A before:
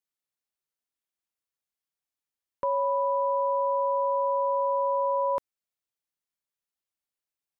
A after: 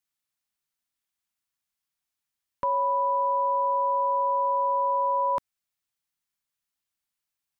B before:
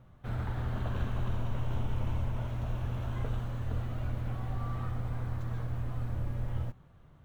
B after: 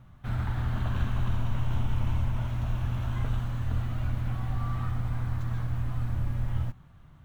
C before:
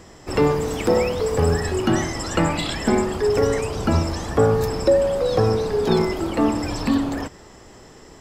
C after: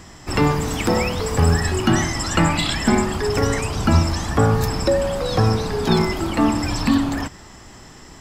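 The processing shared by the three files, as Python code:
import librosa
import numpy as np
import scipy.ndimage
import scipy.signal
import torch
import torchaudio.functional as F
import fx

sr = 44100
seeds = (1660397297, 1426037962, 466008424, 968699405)

y = fx.peak_eq(x, sr, hz=470.0, db=-10.0, octaves=0.96)
y = y * librosa.db_to_amplitude(5.0)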